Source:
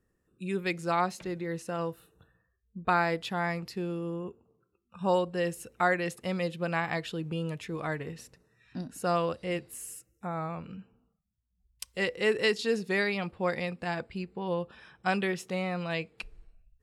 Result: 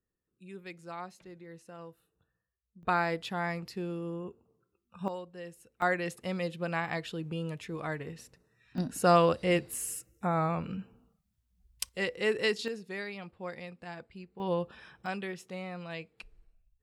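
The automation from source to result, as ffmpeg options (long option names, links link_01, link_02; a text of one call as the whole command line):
ffmpeg -i in.wav -af "asetnsamples=nb_out_samples=441:pad=0,asendcmd='2.83 volume volume -2.5dB;5.08 volume volume -14dB;5.82 volume volume -2.5dB;8.78 volume volume 5.5dB;11.89 volume volume -2.5dB;12.68 volume volume -10.5dB;14.4 volume volume 0.5dB;15.06 volume volume -8dB',volume=-14dB" out.wav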